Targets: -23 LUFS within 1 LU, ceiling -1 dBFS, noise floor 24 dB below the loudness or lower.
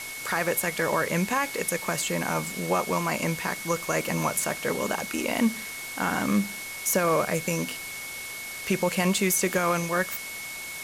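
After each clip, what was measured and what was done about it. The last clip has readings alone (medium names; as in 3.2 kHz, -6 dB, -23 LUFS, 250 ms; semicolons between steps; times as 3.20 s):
steady tone 2.2 kHz; tone level -37 dBFS; noise floor -37 dBFS; noise floor target -51 dBFS; loudness -27.0 LUFS; peak level -13.0 dBFS; loudness target -23.0 LUFS
-> band-stop 2.2 kHz, Q 30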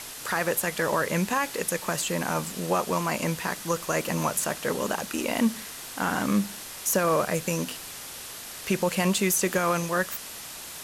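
steady tone not found; noise floor -40 dBFS; noise floor target -51 dBFS
-> noise reduction 11 dB, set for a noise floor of -40 dBFS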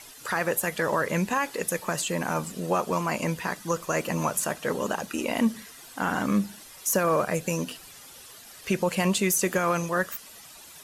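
noise floor -48 dBFS; noise floor target -51 dBFS
-> noise reduction 6 dB, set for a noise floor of -48 dBFS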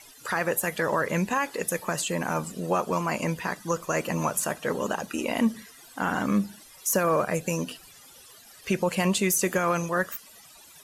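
noise floor -51 dBFS; loudness -27.0 LUFS; peak level -13.5 dBFS; loudness target -23.0 LUFS
-> trim +4 dB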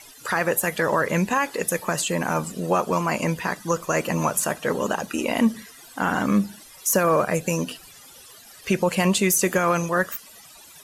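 loudness -23.0 LUFS; peak level -9.5 dBFS; noise floor -47 dBFS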